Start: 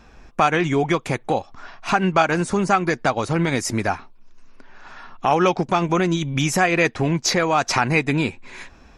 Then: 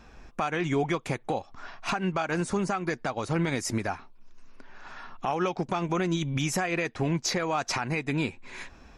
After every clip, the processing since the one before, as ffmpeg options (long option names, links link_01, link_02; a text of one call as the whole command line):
ffmpeg -i in.wav -af "alimiter=limit=-15dB:level=0:latency=1:release=315,volume=-3dB" out.wav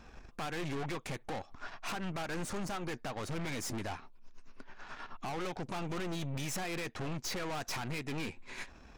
ffmpeg -i in.wav -af "aeval=exprs='(tanh(70.8*val(0)+0.75)-tanh(0.75))/70.8':channel_layout=same,volume=1dB" out.wav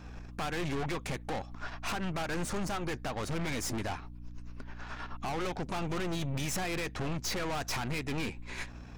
ffmpeg -i in.wav -af "aeval=exprs='val(0)+0.00355*(sin(2*PI*60*n/s)+sin(2*PI*2*60*n/s)/2+sin(2*PI*3*60*n/s)/3+sin(2*PI*4*60*n/s)/4+sin(2*PI*5*60*n/s)/5)':channel_layout=same,volume=3.5dB" out.wav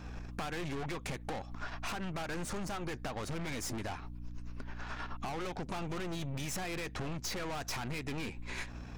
ffmpeg -i in.wav -af "acompressor=threshold=-36dB:ratio=6,volume=1.5dB" out.wav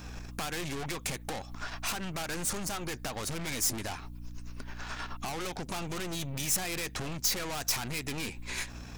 ffmpeg -i in.wav -af "crystalizer=i=3:c=0,volume=1dB" out.wav